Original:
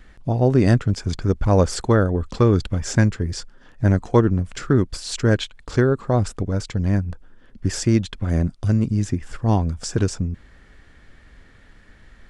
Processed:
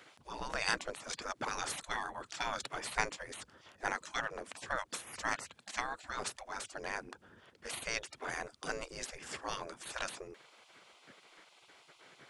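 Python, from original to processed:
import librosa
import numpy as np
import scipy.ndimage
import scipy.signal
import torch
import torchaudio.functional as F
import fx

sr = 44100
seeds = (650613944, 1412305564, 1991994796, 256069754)

y = fx.spec_gate(x, sr, threshold_db=-25, keep='weak')
y = y * librosa.db_to_amplitude(1.0)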